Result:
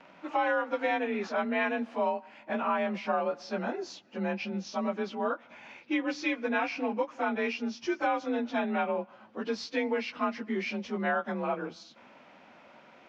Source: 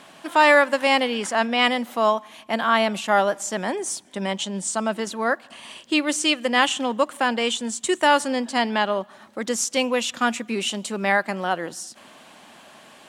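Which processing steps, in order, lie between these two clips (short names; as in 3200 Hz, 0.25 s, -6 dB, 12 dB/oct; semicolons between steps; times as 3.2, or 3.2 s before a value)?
inharmonic rescaling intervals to 91%; air absorption 240 m; compressor 6:1, threshold -22 dBFS, peak gain reduction 9.5 dB; gain -3 dB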